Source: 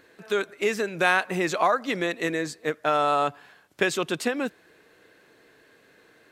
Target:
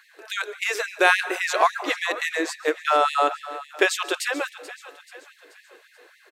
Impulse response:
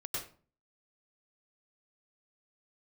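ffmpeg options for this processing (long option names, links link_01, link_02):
-filter_complex "[0:a]aecho=1:1:433|866|1299|1732:0.158|0.0792|0.0396|0.0198,asplit=2[link_01][link_02];[1:a]atrim=start_sample=2205,asetrate=31311,aresample=44100[link_03];[link_02][link_03]afir=irnorm=-1:irlink=0,volume=-19.5dB[link_04];[link_01][link_04]amix=inputs=2:normalize=0,afftfilt=real='re*gte(b*sr/1024,260*pow(1800/260,0.5+0.5*sin(2*PI*3.6*pts/sr)))':imag='im*gte(b*sr/1024,260*pow(1800/260,0.5+0.5*sin(2*PI*3.6*pts/sr)))':win_size=1024:overlap=0.75,volume=4dB"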